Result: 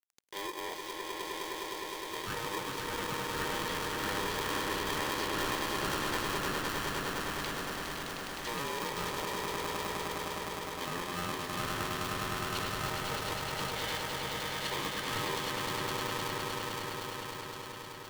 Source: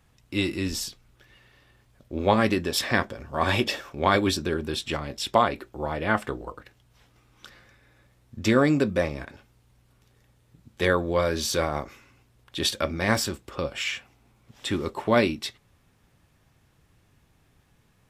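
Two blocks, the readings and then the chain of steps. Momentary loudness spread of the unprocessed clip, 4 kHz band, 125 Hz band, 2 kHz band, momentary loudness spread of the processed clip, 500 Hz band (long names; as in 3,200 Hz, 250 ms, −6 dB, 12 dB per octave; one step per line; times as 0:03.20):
13 LU, −3.5 dB, −9.5 dB, −5.0 dB, 6 LU, −10.5 dB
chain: loose part that buzzes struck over −27 dBFS, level −20 dBFS
reversed playback
downward compressor, threshold −35 dBFS, peak gain reduction 20 dB
reversed playback
soft clipping −34 dBFS, distortion −11 dB
parametric band 2,400 Hz +11 dB 1.5 octaves
treble cut that deepens with the level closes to 1,900 Hz, closed at −34.5 dBFS
centre clipping without the shift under −50.5 dBFS
Butterworth band-reject 1,800 Hz, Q 1.3
low-shelf EQ 79 Hz −7 dB
on a send: echo that builds up and dies away 103 ms, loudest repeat 8, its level −5 dB
on the sum: ring modulator with a square carrier 700 Hz
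level +1.5 dB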